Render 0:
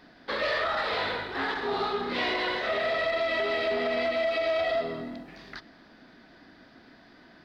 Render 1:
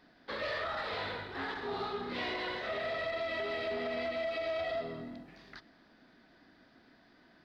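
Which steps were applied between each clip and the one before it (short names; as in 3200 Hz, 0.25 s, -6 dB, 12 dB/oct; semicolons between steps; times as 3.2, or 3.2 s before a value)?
dynamic EQ 100 Hz, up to +7 dB, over -53 dBFS, Q 0.76; gain -8.5 dB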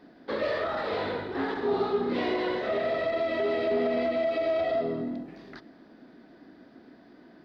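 bell 330 Hz +13.5 dB 2.6 oct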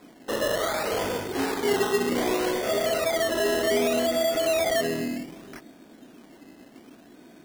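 decimation with a swept rate 15×, swing 60% 0.65 Hz; gain +3 dB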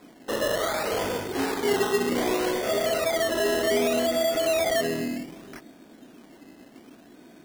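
nothing audible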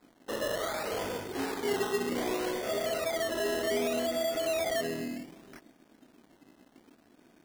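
crossover distortion -55 dBFS; gain -6.5 dB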